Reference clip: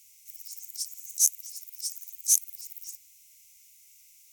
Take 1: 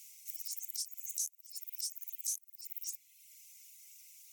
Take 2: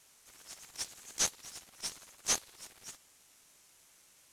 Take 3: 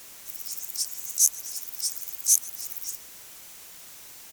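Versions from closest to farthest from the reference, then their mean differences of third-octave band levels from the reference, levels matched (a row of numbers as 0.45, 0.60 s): 1, 3, 2; 3.5, 10.0, 13.0 dB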